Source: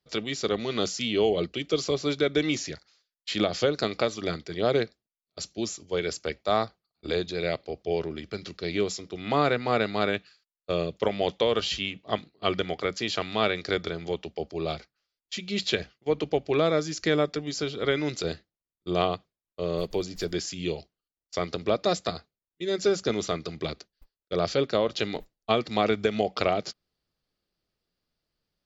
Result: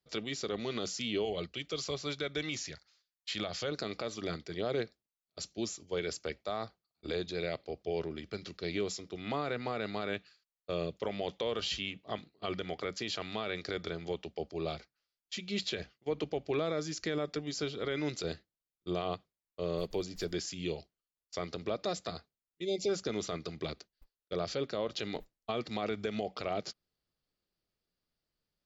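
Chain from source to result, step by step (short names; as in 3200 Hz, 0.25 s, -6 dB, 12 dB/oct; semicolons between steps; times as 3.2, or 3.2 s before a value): 1.25–3.72 bell 320 Hz -7.5 dB 1.8 oct; 22.64–22.89 spectral delete 870–2000 Hz; limiter -18 dBFS, peak gain reduction 10 dB; gain -5.5 dB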